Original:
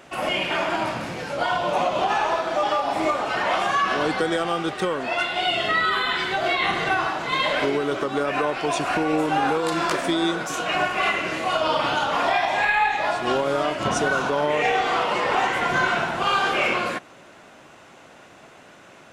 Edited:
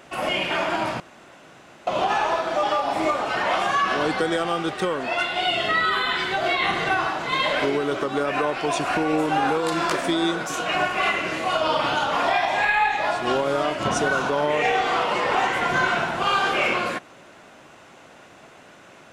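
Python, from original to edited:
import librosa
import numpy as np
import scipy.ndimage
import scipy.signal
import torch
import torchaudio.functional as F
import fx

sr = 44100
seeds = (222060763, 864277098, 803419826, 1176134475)

y = fx.edit(x, sr, fx.room_tone_fill(start_s=1.0, length_s=0.87), tone=tone)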